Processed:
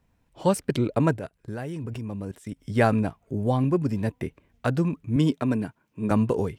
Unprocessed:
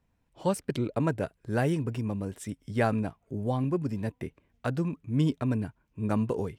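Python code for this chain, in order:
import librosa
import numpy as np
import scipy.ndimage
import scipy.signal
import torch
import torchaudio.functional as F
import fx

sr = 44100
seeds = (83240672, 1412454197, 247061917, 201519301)

y = fx.level_steps(x, sr, step_db=19, at=(1.17, 2.55), fade=0.02)
y = fx.highpass(y, sr, hz=160.0, slope=12, at=(5.16, 6.11))
y = F.gain(torch.from_numpy(y), 5.5).numpy()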